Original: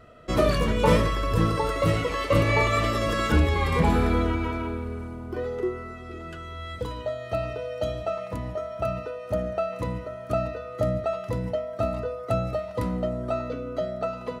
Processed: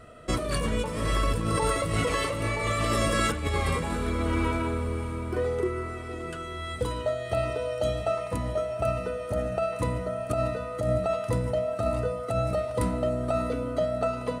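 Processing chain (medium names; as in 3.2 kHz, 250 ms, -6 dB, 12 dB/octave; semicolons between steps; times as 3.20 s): peaking EQ 8.9 kHz +14 dB 0.41 oct; de-hum 185 Hz, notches 7; compressor with a negative ratio -26 dBFS, ratio -1; on a send: echo that smears into a reverb 653 ms, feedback 42%, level -12 dB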